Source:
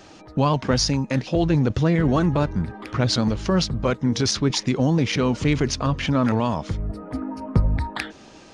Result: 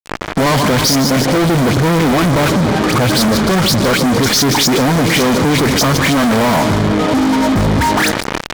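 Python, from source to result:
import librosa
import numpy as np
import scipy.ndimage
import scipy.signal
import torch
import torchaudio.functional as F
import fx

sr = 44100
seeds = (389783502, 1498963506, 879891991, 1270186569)

p1 = fx.wiener(x, sr, points=15)
p2 = np.clip(p1, -10.0 ** (-14.5 / 20.0), 10.0 ** (-14.5 / 20.0))
p3 = scipy.signal.sosfilt(scipy.signal.butter(2, 160.0, 'highpass', fs=sr, output='sos'), p2)
p4 = fx.dispersion(p3, sr, late='highs', ms=90.0, hz=2400.0)
p5 = p4 + fx.echo_feedback(p4, sr, ms=152, feedback_pct=58, wet_db=-17.5, dry=0)
p6 = fx.fuzz(p5, sr, gain_db=44.0, gate_db=-41.0)
p7 = fx.notch(p6, sr, hz=2700.0, q=16.0)
p8 = fx.env_flatten(p7, sr, amount_pct=50)
y = F.gain(torch.from_numpy(p8), 2.0).numpy()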